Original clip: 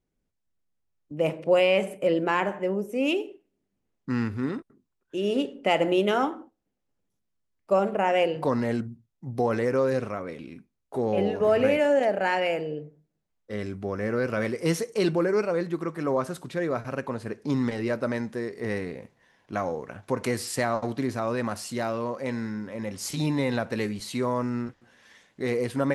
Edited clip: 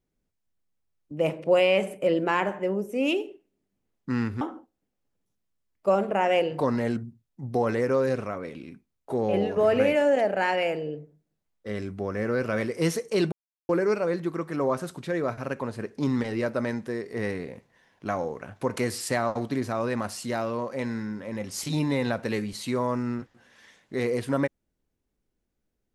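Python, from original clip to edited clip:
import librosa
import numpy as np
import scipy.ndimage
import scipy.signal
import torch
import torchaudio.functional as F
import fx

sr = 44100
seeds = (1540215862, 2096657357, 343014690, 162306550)

y = fx.edit(x, sr, fx.cut(start_s=4.41, length_s=1.84),
    fx.insert_silence(at_s=15.16, length_s=0.37), tone=tone)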